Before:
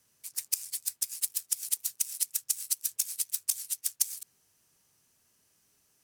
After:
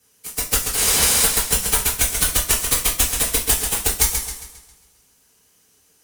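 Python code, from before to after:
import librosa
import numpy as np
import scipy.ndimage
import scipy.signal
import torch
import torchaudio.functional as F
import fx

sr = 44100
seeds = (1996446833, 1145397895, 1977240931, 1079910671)

y = fx.delta_mod(x, sr, bps=64000, step_db=-22.0, at=(0.77, 1.23))
y = fx.cheby_harmonics(y, sr, harmonics=(8,), levels_db=(-12,), full_scale_db=-6.5)
y = fx.rev_double_slope(y, sr, seeds[0], early_s=0.31, late_s=1.7, knee_db=-27, drr_db=-7.5)
y = fx.echo_warbled(y, sr, ms=135, feedback_pct=44, rate_hz=2.8, cents=90, wet_db=-6.5)
y = y * 10.0 ** (2.0 / 20.0)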